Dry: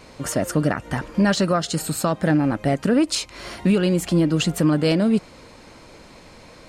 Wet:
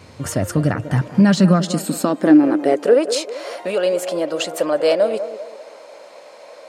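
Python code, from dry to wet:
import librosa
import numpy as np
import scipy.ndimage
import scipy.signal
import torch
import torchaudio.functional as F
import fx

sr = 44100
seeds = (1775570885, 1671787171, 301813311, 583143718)

y = fx.filter_sweep_highpass(x, sr, from_hz=92.0, to_hz=580.0, start_s=0.55, end_s=3.19, q=4.1)
y = fx.echo_banded(y, sr, ms=195, feedback_pct=45, hz=580.0, wet_db=-10.0)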